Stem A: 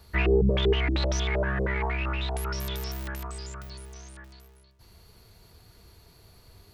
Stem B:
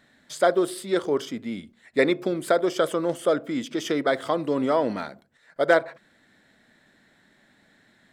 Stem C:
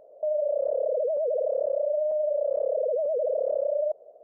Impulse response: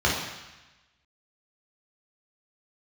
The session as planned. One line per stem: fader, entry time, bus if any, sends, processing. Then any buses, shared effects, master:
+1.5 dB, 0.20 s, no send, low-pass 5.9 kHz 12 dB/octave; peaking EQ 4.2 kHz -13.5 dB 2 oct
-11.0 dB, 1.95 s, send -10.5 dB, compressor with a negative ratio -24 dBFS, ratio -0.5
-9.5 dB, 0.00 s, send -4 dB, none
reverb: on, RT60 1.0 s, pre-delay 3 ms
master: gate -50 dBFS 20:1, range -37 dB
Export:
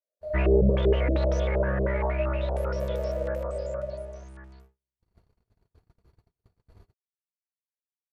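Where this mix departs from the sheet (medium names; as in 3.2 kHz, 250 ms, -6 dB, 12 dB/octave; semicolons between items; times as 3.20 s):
stem B: muted; stem C -9.5 dB -> -18.5 dB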